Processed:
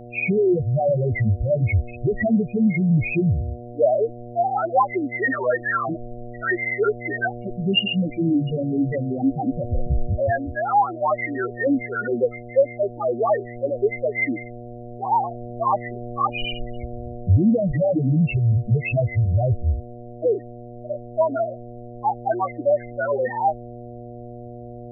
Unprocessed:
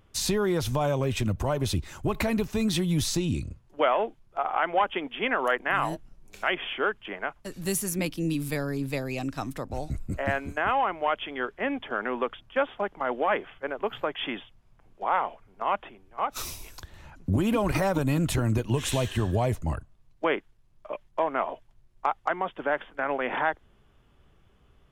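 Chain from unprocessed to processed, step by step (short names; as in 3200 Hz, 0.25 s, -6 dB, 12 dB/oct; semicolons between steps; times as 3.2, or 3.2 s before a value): nonlinear frequency compression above 1800 Hz 4:1; loudest bins only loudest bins 2; buzz 120 Hz, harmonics 6, -50 dBFS -2 dB/oct; in parallel at +2 dB: vocal rider 0.5 s; on the sum: gain +4.5 dB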